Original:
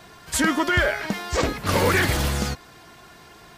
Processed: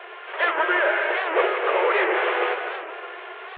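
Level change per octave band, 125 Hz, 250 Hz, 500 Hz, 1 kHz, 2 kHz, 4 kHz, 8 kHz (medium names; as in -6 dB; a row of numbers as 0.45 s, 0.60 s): under -40 dB, -8.5 dB, +3.5 dB, +3.5 dB, +2.0 dB, -4.5 dB, under -40 dB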